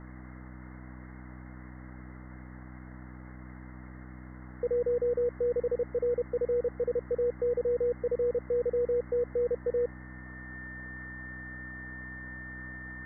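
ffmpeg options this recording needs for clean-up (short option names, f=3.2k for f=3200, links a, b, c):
-af "bandreject=f=62.8:t=h:w=4,bandreject=f=125.6:t=h:w=4,bandreject=f=188.4:t=h:w=4,bandreject=f=251.2:t=h:w=4,bandreject=f=314:t=h:w=4,bandreject=f=1.8k:w=30,afwtdn=0.0056"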